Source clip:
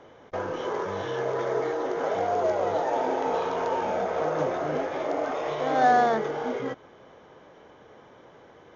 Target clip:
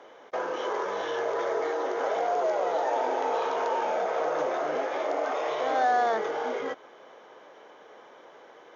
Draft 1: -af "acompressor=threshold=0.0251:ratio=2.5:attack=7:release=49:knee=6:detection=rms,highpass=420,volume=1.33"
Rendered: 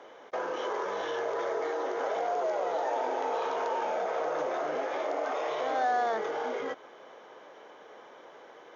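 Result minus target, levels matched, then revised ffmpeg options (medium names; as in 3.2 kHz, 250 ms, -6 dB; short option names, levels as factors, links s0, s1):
compression: peak gain reduction +4 dB
-af "acompressor=threshold=0.0531:ratio=2.5:attack=7:release=49:knee=6:detection=rms,highpass=420,volume=1.33"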